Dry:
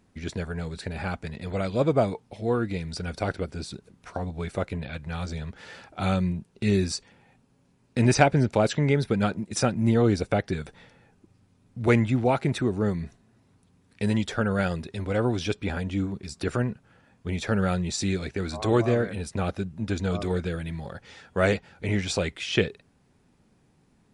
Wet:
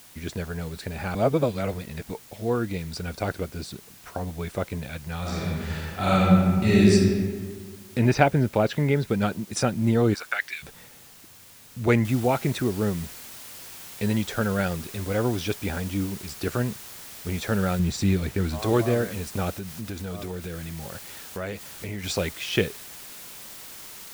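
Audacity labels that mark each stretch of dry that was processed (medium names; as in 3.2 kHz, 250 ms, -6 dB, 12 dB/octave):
1.150000	2.100000	reverse
5.200000	6.920000	reverb throw, RT60 1.8 s, DRR -7 dB
7.980000	9.080000	low-pass 3.9 kHz
10.130000	10.620000	resonant high-pass 1.1 kHz -> 2.6 kHz, resonance Q 3.6
12.050000	12.050000	noise floor step -50 dB -42 dB
17.790000	18.590000	tone controls bass +7 dB, treble -4 dB
19.540000	22.040000	compression 3:1, threshold -31 dBFS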